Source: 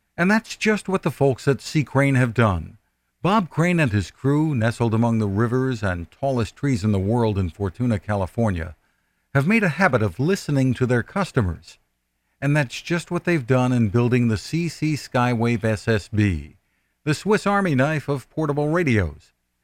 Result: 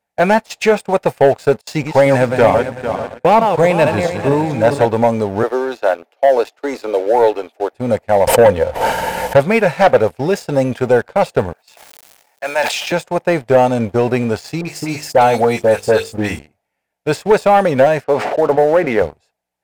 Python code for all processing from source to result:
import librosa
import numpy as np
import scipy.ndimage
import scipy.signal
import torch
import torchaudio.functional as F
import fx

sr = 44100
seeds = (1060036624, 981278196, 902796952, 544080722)

y = fx.chain(x, sr, fx.reverse_delay_fb(ms=224, feedback_pct=51, wet_db=-6.5),
    fx.echo_single(ms=569, db=-19.0),
    fx.gate_hold(open_db=-22.0, close_db=-34.0, hold_ms=71.0, range_db=-21, attack_ms=1.4, release_ms=100.0), at=(1.61, 4.86))
y = fx.chain(y, sr, fx.steep_highpass(hz=280.0, slope=48),
    fx.peak_eq(hz=8000.0, db=-8.5, octaves=0.44), at=(5.43, 7.73))
y = fx.chain(y, sr, fx.low_shelf(hz=150.0, db=7.0),
    fx.small_body(hz=(510.0, 920.0, 3000.0), ring_ms=45, db=11),
    fx.pre_swell(db_per_s=22.0), at=(8.27, 9.4))
y = fx.chain(y, sr, fx.highpass(hz=850.0, slope=12),
    fx.quant_companded(bits=6),
    fx.sustainer(db_per_s=20.0), at=(11.53, 12.92))
y = fx.chain(y, sr, fx.high_shelf(hz=6200.0, db=9.5),
    fx.hum_notches(base_hz=50, count=10),
    fx.dispersion(late='highs', ms=67.0, hz=2000.0), at=(14.61, 16.39))
y = fx.chain(y, sr, fx.bandpass_edges(low_hz=210.0, high_hz=2700.0),
    fx.sustainer(db_per_s=51.0), at=(18.04, 19.02))
y = fx.highpass(y, sr, hz=200.0, slope=6)
y = fx.band_shelf(y, sr, hz=630.0, db=12.0, octaves=1.2)
y = fx.leveller(y, sr, passes=2)
y = y * librosa.db_to_amplitude(-4.0)